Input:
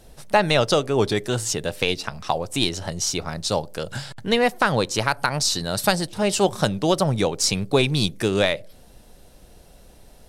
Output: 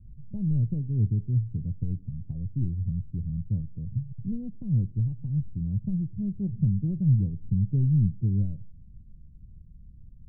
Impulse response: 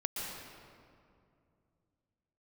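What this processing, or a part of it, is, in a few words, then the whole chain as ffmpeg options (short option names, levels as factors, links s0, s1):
the neighbour's flat through the wall: -af "lowpass=f=180:w=0.5412,lowpass=f=180:w=1.3066,equalizer=f=95:t=o:w=0.9:g=5.5,volume=1.19"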